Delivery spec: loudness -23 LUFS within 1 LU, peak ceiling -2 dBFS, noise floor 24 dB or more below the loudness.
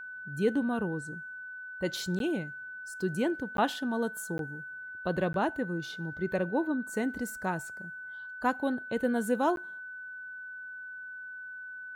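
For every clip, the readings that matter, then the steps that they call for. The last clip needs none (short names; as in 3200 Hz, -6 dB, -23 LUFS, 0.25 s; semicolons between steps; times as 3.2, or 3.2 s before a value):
dropouts 5; longest dropout 12 ms; steady tone 1500 Hz; tone level -40 dBFS; loudness -33.5 LUFS; peak -15.0 dBFS; loudness target -23.0 LUFS
-> interpolate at 2.19/3.57/4.38/5.33/9.56, 12 ms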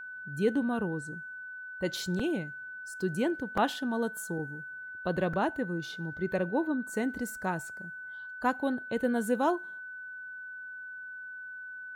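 dropouts 0; steady tone 1500 Hz; tone level -40 dBFS
-> notch 1500 Hz, Q 30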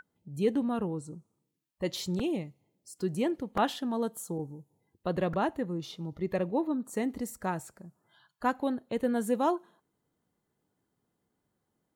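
steady tone none; loudness -32.5 LUFS; peak -15.0 dBFS; loudness target -23.0 LUFS
-> gain +9.5 dB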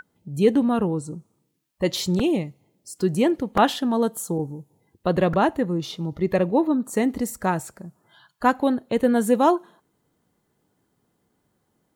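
loudness -23.0 LUFS; peak -5.5 dBFS; noise floor -72 dBFS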